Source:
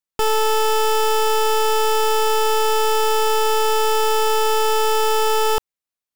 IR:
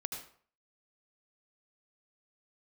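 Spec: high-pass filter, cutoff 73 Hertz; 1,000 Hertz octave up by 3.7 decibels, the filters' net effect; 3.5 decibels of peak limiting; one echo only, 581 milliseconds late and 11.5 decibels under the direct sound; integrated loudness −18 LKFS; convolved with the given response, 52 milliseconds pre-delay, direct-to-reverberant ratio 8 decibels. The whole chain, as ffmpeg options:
-filter_complex "[0:a]highpass=73,equalizer=frequency=1000:width_type=o:gain=4.5,alimiter=limit=-13dB:level=0:latency=1,aecho=1:1:581:0.266,asplit=2[link_01][link_02];[1:a]atrim=start_sample=2205,adelay=52[link_03];[link_02][link_03]afir=irnorm=-1:irlink=0,volume=-8dB[link_04];[link_01][link_04]amix=inputs=2:normalize=0,volume=1dB"

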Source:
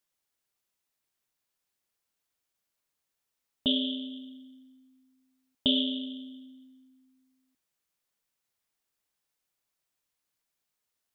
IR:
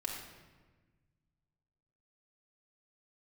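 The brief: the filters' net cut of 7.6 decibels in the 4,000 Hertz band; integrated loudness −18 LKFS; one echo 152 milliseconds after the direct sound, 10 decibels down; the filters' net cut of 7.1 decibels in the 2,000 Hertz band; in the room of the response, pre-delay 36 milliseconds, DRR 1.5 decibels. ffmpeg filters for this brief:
-filter_complex "[0:a]equalizer=frequency=2000:width_type=o:gain=-7,equalizer=frequency=4000:width_type=o:gain=-7,aecho=1:1:152:0.316,asplit=2[link_01][link_02];[1:a]atrim=start_sample=2205,adelay=36[link_03];[link_02][link_03]afir=irnorm=-1:irlink=0,volume=-3dB[link_04];[link_01][link_04]amix=inputs=2:normalize=0,volume=15dB"

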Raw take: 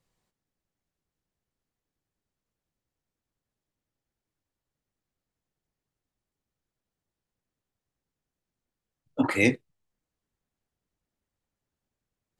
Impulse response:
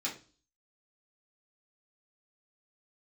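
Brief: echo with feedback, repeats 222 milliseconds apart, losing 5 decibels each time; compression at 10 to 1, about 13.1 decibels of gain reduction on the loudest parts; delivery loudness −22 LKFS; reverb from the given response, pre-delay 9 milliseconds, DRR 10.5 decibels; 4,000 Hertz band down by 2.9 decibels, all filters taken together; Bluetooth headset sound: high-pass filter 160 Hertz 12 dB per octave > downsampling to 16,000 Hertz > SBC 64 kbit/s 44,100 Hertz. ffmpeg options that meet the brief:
-filter_complex "[0:a]equalizer=frequency=4000:width_type=o:gain=-3.5,acompressor=threshold=-31dB:ratio=10,aecho=1:1:222|444|666|888|1110|1332|1554:0.562|0.315|0.176|0.0988|0.0553|0.031|0.0173,asplit=2[link_01][link_02];[1:a]atrim=start_sample=2205,adelay=9[link_03];[link_02][link_03]afir=irnorm=-1:irlink=0,volume=-14dB[link_04];[link_01][link_04]amix=inputs=2:normalize=0,highpass=160,aresample=16000,aresample=44100,volume=15.5dB" -ar 44100 -c:a sbc -b:a 64k

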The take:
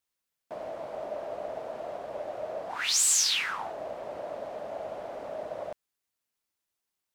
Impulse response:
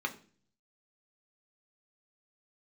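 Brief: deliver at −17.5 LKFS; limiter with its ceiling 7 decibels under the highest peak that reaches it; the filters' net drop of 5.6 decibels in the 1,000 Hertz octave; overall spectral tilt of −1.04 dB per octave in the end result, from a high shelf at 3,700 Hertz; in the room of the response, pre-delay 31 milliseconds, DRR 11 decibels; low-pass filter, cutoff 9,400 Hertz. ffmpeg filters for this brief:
-filter_complex "[0:a]lowpass=9400,equalizer=frequency=1000:width_type=o:gain=-8,highshelf=frequency=3700:gain=-7,alimiter=level_in=2dB:limit=-24dB:level=0:latency=1,volume=-2dB,asplit=2[link_01][link_02];[1:a]atrim=start_sample=2205,adelay=31[link_03];[link_02][link_03]afir=irnorm=-1:irlink=0,volume=-16dB[link_04];[link_01][link_04]amix=inputs=2:normalize=0,volume=21dB"

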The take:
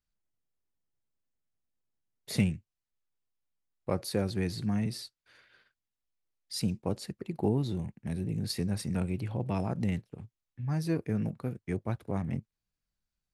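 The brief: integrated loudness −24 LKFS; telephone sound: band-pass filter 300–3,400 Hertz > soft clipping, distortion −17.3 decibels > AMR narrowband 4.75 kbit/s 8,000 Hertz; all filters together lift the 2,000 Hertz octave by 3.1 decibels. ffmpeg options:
ffmpeg -i in.wav -af "highpass=300,lowpass=3400,equalizer=frequency=2000:width_type=o:gain=4.5,asoftclip=threshold=-24.5dB,volume=17.5dB" -ar 8000 -c:a libopencore_amrnb -b:a 4750 out.amr

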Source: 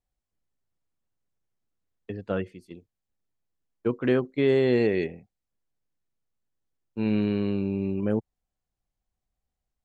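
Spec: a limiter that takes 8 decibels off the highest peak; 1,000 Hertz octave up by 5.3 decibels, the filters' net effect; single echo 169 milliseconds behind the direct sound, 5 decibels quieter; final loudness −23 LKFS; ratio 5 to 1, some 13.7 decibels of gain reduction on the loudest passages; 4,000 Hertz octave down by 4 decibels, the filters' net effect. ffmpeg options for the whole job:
ffmpeg -i in.wav -af "equalizer=frequency=1000:width_type=o:gain=7.5,equalizer=frequency=4000:width_type=o:gain=-6,acompressor=threshold=-33dB:ratio=5,alimiter=level_in=3.5dB:limit=-24dB:level=0:latency=1,volume=-3.5dB,aecho=1:1:169:0.562,volume=15.5dB" out.wav

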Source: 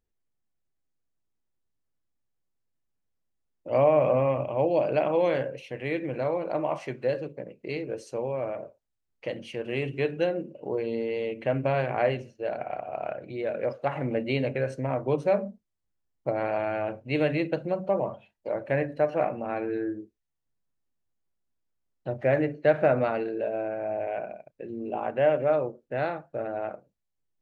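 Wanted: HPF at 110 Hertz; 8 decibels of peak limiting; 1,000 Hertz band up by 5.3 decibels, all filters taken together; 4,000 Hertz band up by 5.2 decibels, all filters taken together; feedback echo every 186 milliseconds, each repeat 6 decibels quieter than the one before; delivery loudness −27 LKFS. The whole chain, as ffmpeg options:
ffmpeg -i in.wav -af "highpass=110,equalizer=frequency=1000:width_type=o:gain=7.5,equalizer=frequency=4000:width_type=o:gain=7,alimiter=limit=-14dB:level=0:latency=1,aecho=1:1:186|372|558|744|930|1116:0.501|0.251|0.125|0.0626|0.0313|0.0157,volume=-0.5dB" out.wav

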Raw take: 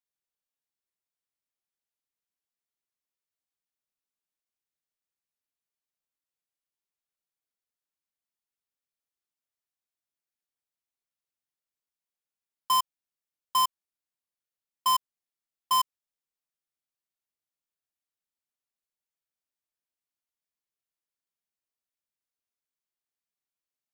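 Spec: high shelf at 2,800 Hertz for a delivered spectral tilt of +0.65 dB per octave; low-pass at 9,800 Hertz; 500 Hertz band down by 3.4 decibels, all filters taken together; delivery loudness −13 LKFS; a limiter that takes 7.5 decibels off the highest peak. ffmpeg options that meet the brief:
ffmpeg -i in.wav -af "lowpass=9800,equalizer=frequency=500:width_type=o:gain=-5,highshelf=frequency=2800:gain=4,volume=22dB,alimiter=limit=-1dB:level=0:latency=1" out.wav

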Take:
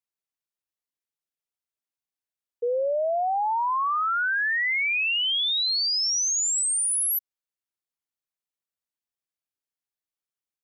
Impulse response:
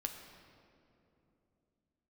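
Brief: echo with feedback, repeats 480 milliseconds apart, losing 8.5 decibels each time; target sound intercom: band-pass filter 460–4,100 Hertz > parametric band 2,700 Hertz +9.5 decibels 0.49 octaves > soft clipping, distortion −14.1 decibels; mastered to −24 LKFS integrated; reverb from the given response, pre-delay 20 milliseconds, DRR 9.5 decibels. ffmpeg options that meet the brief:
-filter_complex "[0:a]aecho=1:1:480|960|1440|1920:0.376|0.143|0.0543|0.0206,asplit=2[link_01][link_02];[1:a]atrim=start_sample=2205,adelay=20[link_03];[link_02][link_03]afir=irnorm=-1:irlink=0,volume=-9dB[link_04];[link_01][link_04]amix=inputs=2:normalize=0,highpass=460,lowpass=4100,equalizer=frequency=2700:width_type=o:width=0.49:gain=9.5,asoftclip=threshold=-17.5dB,volume=-1.5dB"

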